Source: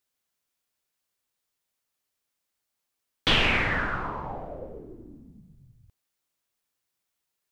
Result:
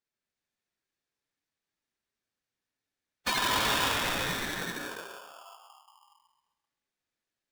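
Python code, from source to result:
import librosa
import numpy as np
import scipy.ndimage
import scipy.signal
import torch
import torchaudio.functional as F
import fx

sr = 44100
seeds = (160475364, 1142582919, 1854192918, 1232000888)

y = fx.rattle_buzz(x, sr, strikes_db=-37.0, level_db=-13.0)
y = fx.notch(y, sr, hz=2000.0, q=15.0)
y = fx.spec_gate(y, sr, threshold_db=-15, keep='strong')
y = scipy.signal.sosfilt(scipy.signal.butter(2, 5600.0, 'lowpass', fs=sr, output='sos'), y)
y = fx.peak_eq(y, sr, hz=700.0, db=8.5, octaves=1.0)
y = fx.echo_feedback(y, sr, ms=132, feedback_pct=40, wet_db=-6.0)
y = fx.pitch_keep_formants(y, sr, semitones=7.0)
y = fx.rev_gated(y, sr, seeds[0], gate_ms=400, shape='rising', drr_db=1.0)
y = y * np.sign(np.sin(2.0 * np.pi * 1000.0 * np.arange(len(y)) / sr))
y = y * 10.0 ** (-7.0 / 20.0)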